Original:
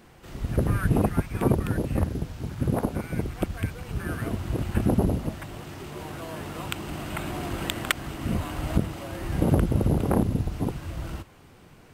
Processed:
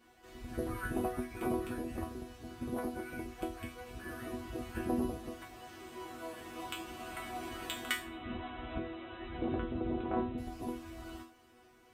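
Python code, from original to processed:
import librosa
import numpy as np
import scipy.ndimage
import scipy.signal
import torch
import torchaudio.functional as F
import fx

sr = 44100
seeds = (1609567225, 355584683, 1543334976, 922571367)

y = scipy.signal.sosfilt(scipy.signal.butter(2, 43.0, 'highpass', fs=sr, output='sos'), x)
y = fx.peak_eq(y, sr, hz=170.0, db=-6.5, octaves=0.55)
y = fx.brickwall_lowpass(y, sr, high_hz=4000.0, at=(7.96, 10.38))
y = fx.resonator_bank(y, sr, root=59, chord='sus4', decay_s=0.38)
y = y * librosa.db_to_amplitude(10.5)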